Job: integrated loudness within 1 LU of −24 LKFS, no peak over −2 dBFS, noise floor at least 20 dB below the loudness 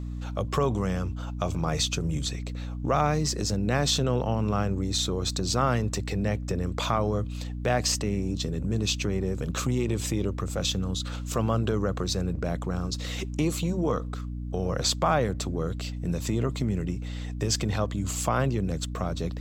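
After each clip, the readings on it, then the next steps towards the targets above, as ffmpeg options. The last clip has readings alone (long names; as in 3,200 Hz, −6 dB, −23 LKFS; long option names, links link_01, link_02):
mains hum 60 Hz; hum harmonics up to 300 Hz; level of the hum −31 dBFS; integrated loudness −28.0 LKFS; sample peak −10.5 dBFS; target loudness −24.0 LKFS
→ -af "bandreject=frequency=60:width_type=h:width=4,bandreject=frequency=120:width_type=h:width=4,bandreject=frequency=180:width_type=h:width=4,bandreject=frequency=240:width_type=h:width=4,bandreject=frequency=300:width_type=h:width=4"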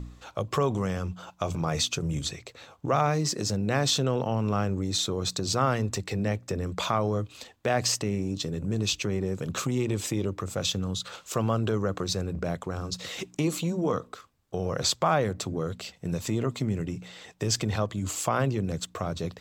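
mains hum none found; integrated loudness −29.0 LKFS; sample peak −11.5 dBFS; target loudness −24.0 LKFS
→ -af "volume=5dB"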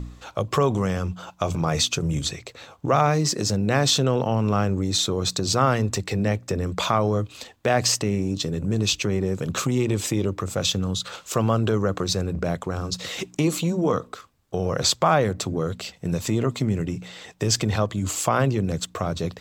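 integrated loudness −24.0 LKFS; sample peak −6.5 dBFS; background noise floor −52 dBFS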